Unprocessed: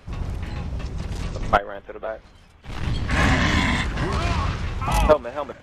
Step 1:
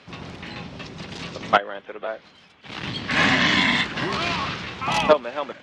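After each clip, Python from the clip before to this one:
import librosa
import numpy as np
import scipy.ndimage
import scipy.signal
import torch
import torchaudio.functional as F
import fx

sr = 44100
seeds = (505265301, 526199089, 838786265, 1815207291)

y = scipy.signal.sosfilt(scipy.signal.cheby1(2, 1.0, [200.0, 3700.0], 'bandpass', fs=sr, output='sos'), x)
y = fx.high_shelf(y, sr, hz=2400.0, db=11.0)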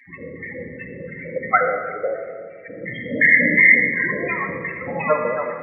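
y = fx.filter_lfo_lowpass(x, sr, shape='square', hz=2.8, low_hz=500.0, high_hz=2000.0, q=5.7)
y = fx.spec_topn(y, sr, count=16)
y = fx.room_shoebox(y, sr, seeds[0], volume_m3=3900.0, walls='mixed', distance_m=2.1)
y = y * 10.0 ** (-3.0 / 20.0)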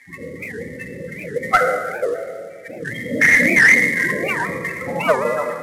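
y = fx.cvsd(x, sr, bps=64000)
y = fx.record_warp(y, sr, rpm=78.0, depth_cents=250.0)
y = y * 10.0 ** (2.5 / 20.0)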